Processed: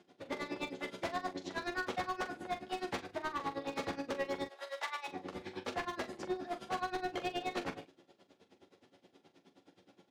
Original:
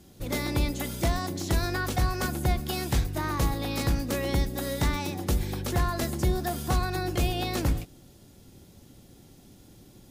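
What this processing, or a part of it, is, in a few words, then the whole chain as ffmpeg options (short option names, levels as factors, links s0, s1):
helicopter radio: -filter_complex "[0:a]highpass=390,lowpass=3000,aeval=exprs='val(0)*pow(10,-24*(0.5-0.5*cos(2*PI*9.5*n/s))/20)':c=same,asoftclip=type=hard:threshold=0.0224,asettb=1/sr,asplit=3[s0][s1][s2];[s0]atrim=end=4.464[s3];[s1]atrim=start=4.46:end=5.08,asetpts=PTS-STARTPTS,afade=t=in:d=0.004:c=qsin,afade=t=out:st=0.616:d=0.004:c=qsin,highpass=f=660:w=0.5412,highpass=f=660:w=1.3066[s4];[s2]atrim=start=5.076[s5];[s3][s4]acrossfade=d=0.004:c1=hsin:c2=qsin[s6];[s6][s5]acrossfade=d=0.004:c1=qsin:c2=hsin,aecho=1:1:11|43:0.501|0.299,volume=1.12"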